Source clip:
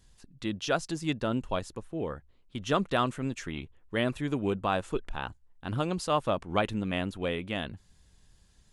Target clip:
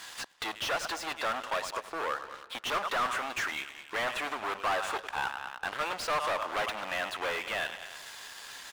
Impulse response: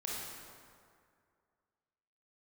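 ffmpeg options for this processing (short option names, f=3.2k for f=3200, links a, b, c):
-filter_complex "[0:a]acontrast=78,asplit=2[a][b];[b]aecho=0:1:102|204|306:0.1|0.042|0.0176[c];[a][c]amix=inputs=2:normalize=0,volume=26.5dB,asoftclip=hard,volume=-26.5dB,acompressor=threshold=-45dB:ratio=8,highpass=990,asplit=2[d][e];[e]highpass=f=720:p=1,volume=38dB,asoftclip=type=tanh:threshold=-16.5dB[f];[d][f]amix=inputs=2:normalize=0,lowpass=f=1.6k:p=1,volume=-6dB,aeval=exprs='sgn(val(0))*max(abs(val(0))-0.00531,0)':c=same,asplit=2[g][h];[h]adelay=224,lowpass=f=4.3k:p=1,volume=-17dB,asplit=2[i][j];[j]adelay=224,lowpass=f=4.3k:p=1,volume=0.37,asplit=2[k][l];[l]adelay=224,lowpass=f=4.3k:p=1,volume=0.37[m];[i][k][m]amix=inputs=3:normalize=0[n];[g][n]amix=inputs=2:normalize=0"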